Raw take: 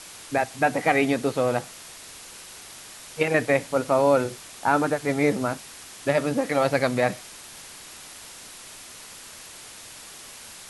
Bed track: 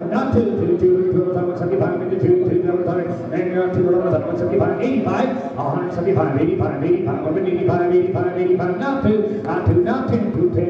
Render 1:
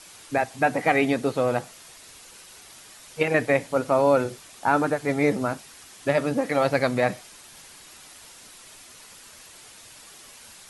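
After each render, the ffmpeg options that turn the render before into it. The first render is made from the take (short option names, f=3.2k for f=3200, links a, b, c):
-af "afftdn=nr=6:nf=-44"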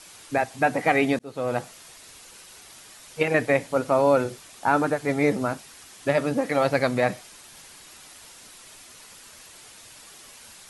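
-filter_complex "[0:a]asplit=2[a][b];[a]atrim=end=1.19,asetpts=PTS-STARTPTS,afade=t=out:st=1.186:d=0.004:c=hsin[c];[b]atrim=start=1.19,asetpts=PTS-STARTPTS,afade=t=in:d=0.42[d];[c][d]concat=n=2:v=0:a=1"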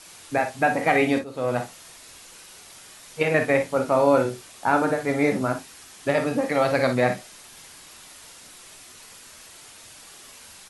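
-filter_complex "[0:a]asplit=2[a][b];[b]adelay=24,volume=-11.5dB[c];[a][c]amix=inputs=2:normalize=0,aecho=1:1:46|57:0.316|0.299"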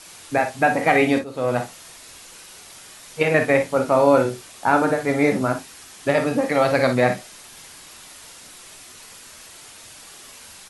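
-af "volume=3dB"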